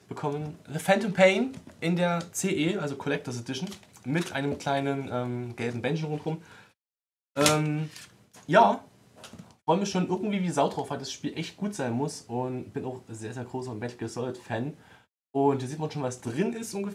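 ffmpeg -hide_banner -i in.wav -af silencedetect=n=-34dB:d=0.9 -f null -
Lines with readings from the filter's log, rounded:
silence_start: 6.36
silence_end: 7.37 | silence_duration: 1.01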